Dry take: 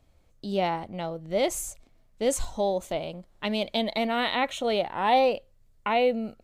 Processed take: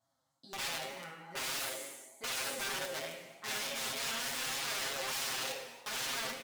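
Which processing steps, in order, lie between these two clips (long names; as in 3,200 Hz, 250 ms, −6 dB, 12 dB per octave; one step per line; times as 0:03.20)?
peak hold with a decay on every bin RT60 1.29 s
flanger 1.7 Hz, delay 8.5 ms, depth 6.7 ms, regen −1%
high-pass filter 180 Hz 12 dB per octave
phaser swept by the level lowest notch 420 Hz, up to 1,800 Hz, full sweep at −20 dBFS
wrap-around overflow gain 28.5 dB
high-shelf EQ 8,500 Hz −11.5 dB
comb filter 7.5 ms, depth 81%
reverb whose tail is shaped and stops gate 400 ms falling, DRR 5 dB
pitch vibrato 3.3 Hz 47 cents
spectral tilt +2 dB per octave
level −7.5 dB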